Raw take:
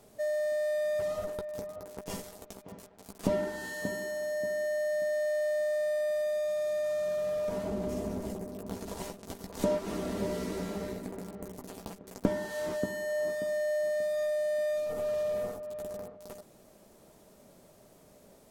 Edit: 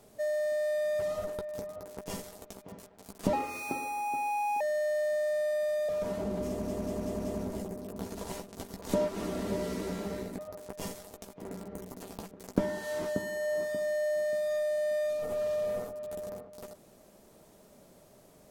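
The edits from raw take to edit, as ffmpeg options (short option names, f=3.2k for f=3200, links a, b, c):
-filter_complex "[0:a]asplit=10[a][b][c][d][e][f][g][h][i][j];[a]atrim=end=3.334[k];[b]atrim=start=3.33:end=5.08,asetpts=PTS-STARTPTS,asetrate=60417,aresample=44100,atrim=end_sample=56332,asetpts=PTS-STARTPTS[l];[c]atrim=start=5.076:end=6.362[m];[d]atrim=start=7.348:end=8.142[n];[e]atrim=start=7.948:end=8.142[o];[f]atrim=start=7.948:end=8.142[p];[g]atrim=start=7.948:end=8.142[q];[h]atrim=start=7.948:end=11.092[r];[i]atrim=start=1.668:end=2.702[s];[j]atrim=start=11.088[t];[k][l]acrossfade=d=0.004:c1=hsin:c2=hsin[u];[u][m]acrossfade=d=0.004:c1=hsin:c2=hsin[v];[v][n]acrossfade=d=0.004:c1=hsin:c2=hsin[w];[w][o]acrossfade=d=0.004:c1=hsin:c2=hsin[x];[x][p]acrossfade=d=0.004:c1=hsin:c2=hsin[y];[y][q]acrossfade=d=0.004:c1=hsin:c2=hsin[z];[z][r]acrossfade=d=0.004:c1=hsin:c2=hsin[aa];[aa][s]acrossfade=d=0.004:c1=hsin:c2=hsin[ab];[ab][t]acrossfade=d=0.004:c1=hsin:c2=hsin"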